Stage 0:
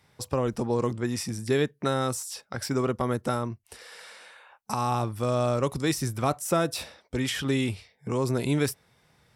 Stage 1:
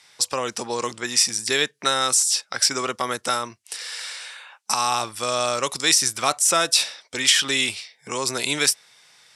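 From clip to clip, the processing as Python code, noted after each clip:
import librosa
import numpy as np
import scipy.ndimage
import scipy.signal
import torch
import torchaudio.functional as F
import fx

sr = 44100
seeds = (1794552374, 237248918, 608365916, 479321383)

y = fx.weighting(x, sr, curve='ITU-R 468')
y = F.gain(torch.from_numpy(y), 5.5).numpy()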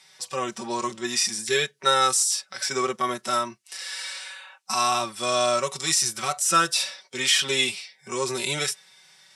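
y = x + 0.73 * np.pad(x, (int(5.3 * sr / 1000.0), 0))[:len(x)]
y = fx.hpss(y, sr, part='percussive', gain_db=-14)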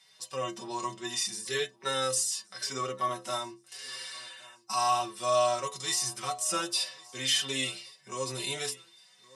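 y = fx.stiff_resonator(x, sr, f0_hz=63.0, decay_s=0.36, stiffness=0.008)
y = fx.echo_feedback(y, sr, ms=1119, feedback_pct=35, wet_db=-23.5)
y = F.gain(torch.from_numpy(y), 2.0).numpy()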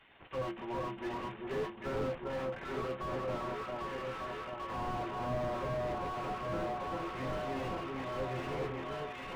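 y = fx.cvsd(x, sr, bps=16000)
y = fx.echo_alternate(y, sr, ms=396, hz=1100.0, feedback_pct=80, wet_db=-3)
y = fx.slew_limit(y, sr, full_power_hz=13.0)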